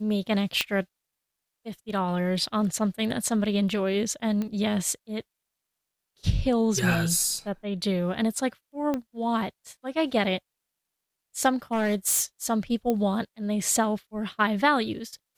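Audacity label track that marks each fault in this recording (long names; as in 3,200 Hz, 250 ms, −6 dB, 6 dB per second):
0.610000	0.610000	click −8 dBFS
4.420000	4.420000	click −19 dBFS
8.940000	8.940000	click −16 dBFS
11.490000	12.240000	clipping −20.5 dBFS
12.900000	12.900000	click −14 dBFS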